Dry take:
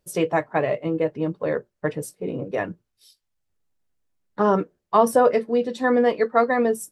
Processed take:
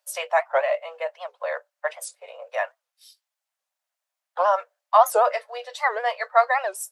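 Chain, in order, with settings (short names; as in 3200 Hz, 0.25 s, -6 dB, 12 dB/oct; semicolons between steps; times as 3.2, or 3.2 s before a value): steep high-pass 570 Hz 72 dB/oct; record warp 78 rpm, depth 250 cents; gain +2.5 dB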